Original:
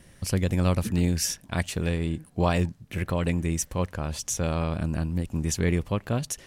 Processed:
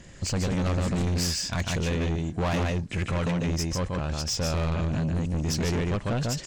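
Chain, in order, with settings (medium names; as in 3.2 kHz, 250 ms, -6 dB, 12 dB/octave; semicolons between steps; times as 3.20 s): knee-point frequency compression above 3.8 kHz 1.5:1; 3.06–4.20 s: transient shaper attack -3 dB, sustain -7 dB; on a send: delay 146 ms -4 dB; on the sum: saturation -28 dBFS, distortion -7 dB; trim +5 dB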